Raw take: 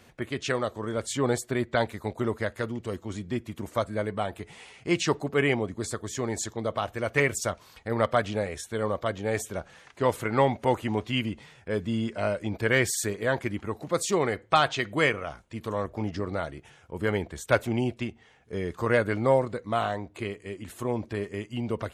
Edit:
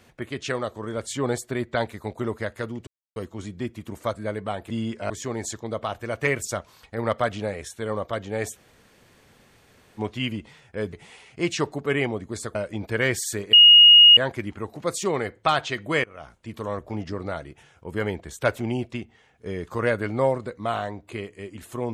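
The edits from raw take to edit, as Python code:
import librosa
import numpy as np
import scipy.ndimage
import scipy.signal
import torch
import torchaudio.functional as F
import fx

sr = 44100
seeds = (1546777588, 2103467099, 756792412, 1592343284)

y = fx.edit(x, sr, fx.insert_silence(at_s=2.87, length_s=0.29),
    fx.swap(start_s=4.41, length_s=1.62, other_s=11.86, other_length_s=0.4),
    fx.room_tone_fill(start_s=9.49, length_s=1.43, crossfade_s=0.04),
    fx.insert_tone(at_s=13.24, length_s=0.64, hz=2870.0, db=-7.5),
    fx.fade_in_from(start_s=15.11, length_s=0.32, floor_db=-23.5), tone=tone)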